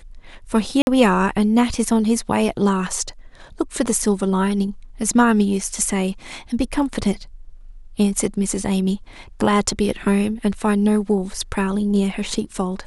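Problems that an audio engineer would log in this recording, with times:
0:00.82–0:00.87: drop-out 51 ms

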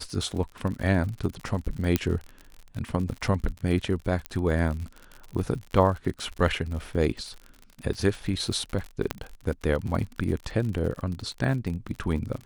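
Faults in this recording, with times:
surface crackle 64 per second −33 dBFS
0:01.96: click −8 dBFS
0:04.26: click −15 dBFS
0:06.48: drop-out 2.1 ms
0:09.11: click −11 dBFS

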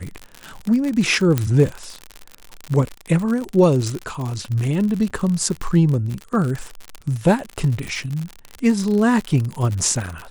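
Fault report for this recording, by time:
surface crackle 68 per second −23 dBFS
0:01.38: click −6 dBFS
0:05.10–0:05.11: drop-out 6 ms

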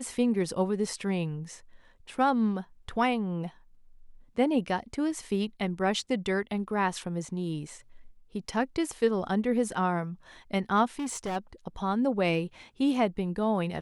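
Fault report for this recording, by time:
0:10.99–0:11.37: clipping −29 dBFS

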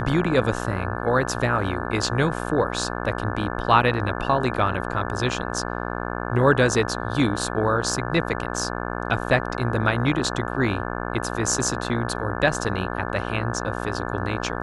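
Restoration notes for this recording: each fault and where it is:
mains buzz 60 Hz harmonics 29 −29 dBFS

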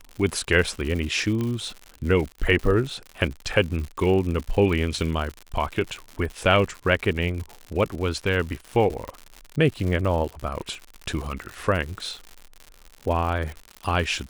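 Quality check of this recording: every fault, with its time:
surface crackle 120 per second −30 dBFS
0:01.41: click −16 dBFS
0:09.08: click −20 dBFS

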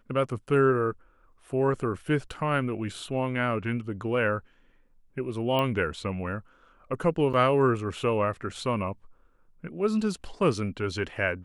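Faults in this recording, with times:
0:05.59: click −15 dBFS
0:07.33–0:07.34: drop-out 6.8 ms

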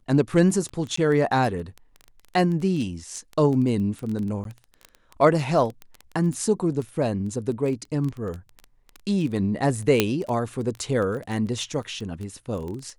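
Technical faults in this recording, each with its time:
surface crackle 11 per second −28 dBFS
0:00.96–0:00.97: drop-out 14 ms
0:04.44–0:04.45: drop-out 12 ms
0:10.00: click −3 dBFS

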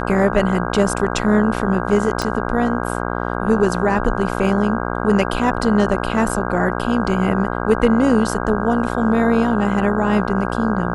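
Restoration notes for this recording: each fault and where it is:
mains buzz 60 Hz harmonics 27 −23 dBFS
0:02.22: click −8 dBFS
0:06.29: drop-out 3.8 ms

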